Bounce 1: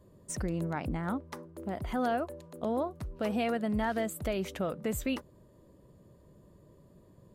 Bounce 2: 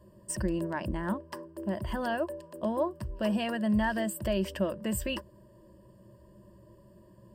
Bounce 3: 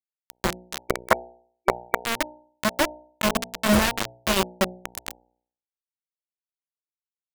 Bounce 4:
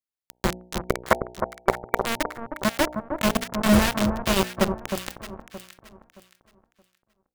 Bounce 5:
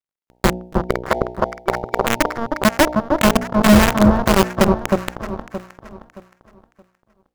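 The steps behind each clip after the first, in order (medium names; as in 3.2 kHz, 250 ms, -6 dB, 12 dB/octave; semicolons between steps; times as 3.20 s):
rippled EQ curve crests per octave 1.3, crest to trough 13 dB
bit crusher 4-bit; time-frequency box 0.90–1.99 s, 350–2300 Hz +11 dB; de-hum 60.72 Hz, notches 15; trim +5.5 dB
bass shelf 360 Hz +5.5 dB; on a send: echo whose repeats swap between lows and highs 311 ms, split 1.3 kHz, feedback 53%, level -6 dB; on the sum: trim -1.5 dB
median filter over 15 samples; loudness maximiser +13 dB; trim -1 dB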